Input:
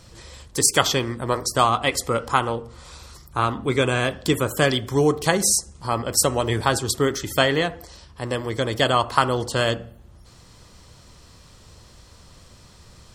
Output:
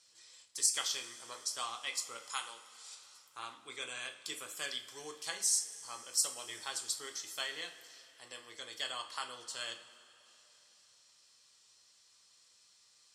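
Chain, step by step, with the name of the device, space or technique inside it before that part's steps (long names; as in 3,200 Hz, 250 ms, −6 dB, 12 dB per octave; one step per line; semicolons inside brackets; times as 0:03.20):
high-pass filter 84 Hz
0:02.29–0:02.95: spectral tilt +3 dB per octave
piezo pickup straight into a mixer (low-pass filter 7,200 Hz 12 dB per octave; first difference)
coupled-rooms reverb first 0.33 s, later 3.4 s, from −18 dB, DRR 3.5 dB
level −8 dB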